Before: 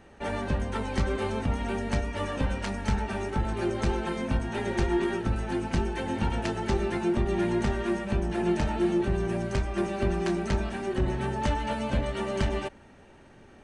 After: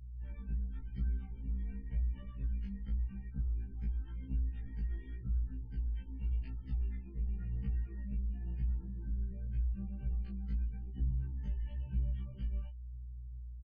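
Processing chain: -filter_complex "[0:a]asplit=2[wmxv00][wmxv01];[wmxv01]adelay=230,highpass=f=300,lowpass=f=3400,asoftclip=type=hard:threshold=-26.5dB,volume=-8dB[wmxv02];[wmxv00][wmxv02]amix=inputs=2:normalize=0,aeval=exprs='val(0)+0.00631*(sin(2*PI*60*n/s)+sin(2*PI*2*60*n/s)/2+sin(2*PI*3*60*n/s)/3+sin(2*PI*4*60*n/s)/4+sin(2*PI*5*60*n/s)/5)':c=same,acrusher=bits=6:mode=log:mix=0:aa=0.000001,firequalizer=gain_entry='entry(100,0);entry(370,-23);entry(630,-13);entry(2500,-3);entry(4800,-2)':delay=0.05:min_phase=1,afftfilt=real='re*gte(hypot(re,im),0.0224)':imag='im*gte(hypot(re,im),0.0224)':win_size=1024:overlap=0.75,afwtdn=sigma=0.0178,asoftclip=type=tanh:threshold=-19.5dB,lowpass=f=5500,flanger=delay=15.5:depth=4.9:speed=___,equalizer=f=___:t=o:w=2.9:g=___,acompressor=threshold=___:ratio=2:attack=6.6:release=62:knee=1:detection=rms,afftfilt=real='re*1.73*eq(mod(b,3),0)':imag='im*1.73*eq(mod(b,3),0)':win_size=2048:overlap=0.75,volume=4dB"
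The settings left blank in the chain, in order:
0.91, 140, -6.5, -36dB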